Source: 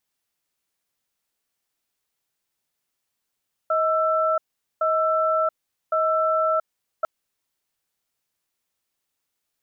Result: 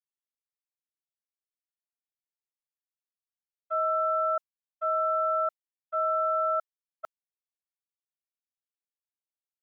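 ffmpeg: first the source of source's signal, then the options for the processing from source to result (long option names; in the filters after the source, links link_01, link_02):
-f lavfi -i "aevalsrc='0.0891*(sin(2*PI*634*t)+sin(2*PI*1330*t))*clip(min(mod(t,1.11),0.68-mod(t,1.11))/0.005,0,1)':duration=3.35:sample_rate=44100"
-af "agate=range=-33dB:threshold=-17dB:ratio=3:detection=peak,lowshelf=frequency=440:gain=-10.5"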